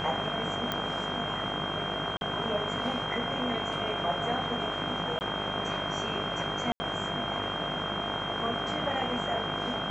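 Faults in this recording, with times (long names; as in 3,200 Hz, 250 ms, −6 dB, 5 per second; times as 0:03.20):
mains buzz 50 Hz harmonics 32 −37 dBFS
whistle 3,200 Hz −35 dBFS
0:00.72: click −15 dBFS
0:02.17–0:02.21: drop-out 41 ms
0:05.19–0:05.21: drop-out 19 ms
0:06.72–0:06.80: drop-out 80 ms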